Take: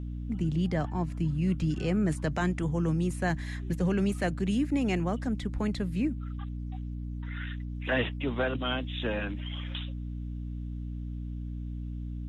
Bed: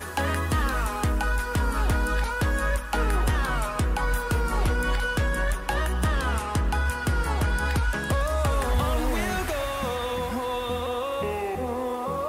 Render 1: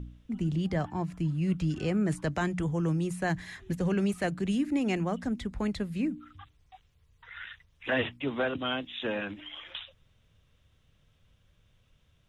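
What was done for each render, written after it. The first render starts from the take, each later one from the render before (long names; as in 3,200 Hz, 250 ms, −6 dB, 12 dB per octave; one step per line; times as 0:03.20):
hum removal 60 Hz, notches 5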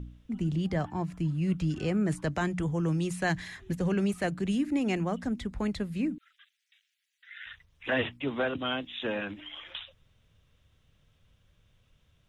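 0:02.92–0:03.48: parametric band 3,900 Hz +6 dB 2.4 octaves
0:06.18–0:07.46: Butterworth high-pass 1,600 Hz 48 dB per octave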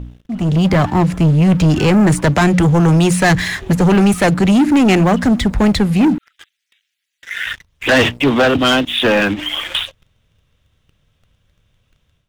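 leveller curve on the samples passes 3
automatic gain control gain up to 11 dB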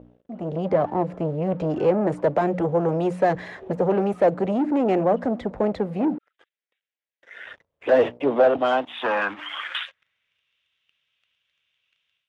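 band-pass filter sweep 540 Hz → 2,700 Hz, 0:08.28–0:10.50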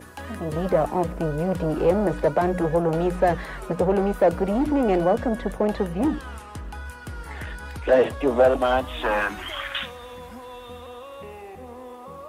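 mix in bed −11 dB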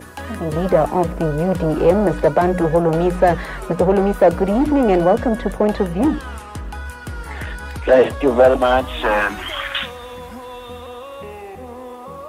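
level +6 dB
brickwall limiter −2 dBFS, peak gain reduction 1 dB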